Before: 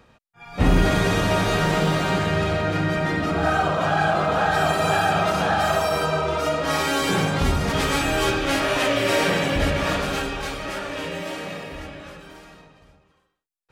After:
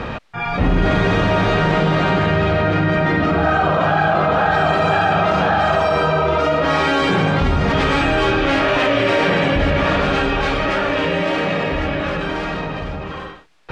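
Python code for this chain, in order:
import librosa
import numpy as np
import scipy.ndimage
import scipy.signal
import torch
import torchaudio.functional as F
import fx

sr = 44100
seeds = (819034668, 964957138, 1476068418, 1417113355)

y = scipy.signal.sosfilt(scipy.signal.butter(2, 3200.0, 'lowpass', fs=sr, output='sos'), x)
y = fx.env_flatten(y, sr, amount_pct=70)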